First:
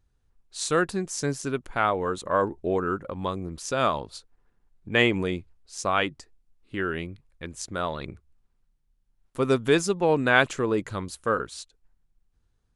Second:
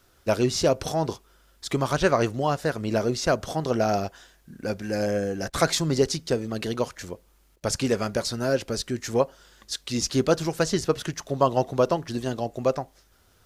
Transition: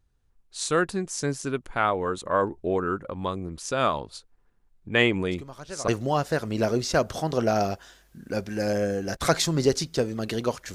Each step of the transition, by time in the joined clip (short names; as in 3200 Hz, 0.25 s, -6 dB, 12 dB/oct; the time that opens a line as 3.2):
first
5.31 add second from 1.64 s 0.57 s -17.5 dB
5.88 switch to second from 2.21 s